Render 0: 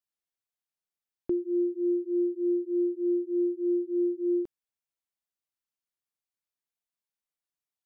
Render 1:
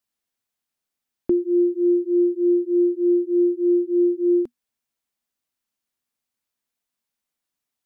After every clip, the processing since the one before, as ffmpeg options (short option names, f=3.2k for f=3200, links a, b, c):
-af "equalizer=f=240:t=o:w=0.24:g=9,volume=8dB"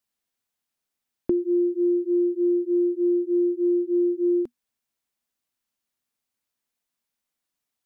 -af "acompressor=threshold=-19dB:ratio=6"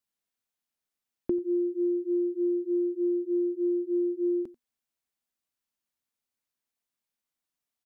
-af "aecho=1:1:90:0.1,volume=-5dB"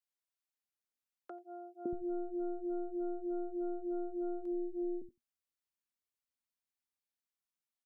-filter_complex "[0:a]aeval=exprs='0.141*(cos(1*acos(clip(val(0)/0.141,-1,1)))-cos(1*PI/2))+0.002*(cos(3*acos(clip(val(0)/0.141,-1,1)))-cos(3*PI/2))+0.02*(cos(4*acos(clip(val(0)/0.141,-1,1)))-cos(4*PI/2))':c=same,acrossover=split=180|540[a][b][c];[b]adelay=560[d];[a]adelay=630[e];[e][d][c]amix=inputs=3:normalize=0,volume=-7.5dB"